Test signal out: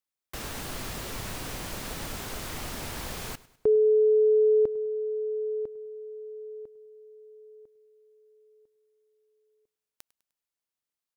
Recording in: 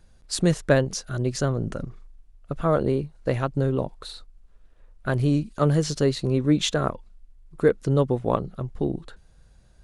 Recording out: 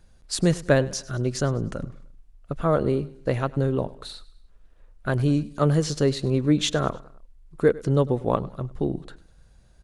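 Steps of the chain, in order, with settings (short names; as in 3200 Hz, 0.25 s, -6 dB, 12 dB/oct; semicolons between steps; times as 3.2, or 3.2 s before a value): feedback echo 0.101 s, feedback 45%, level -20 dB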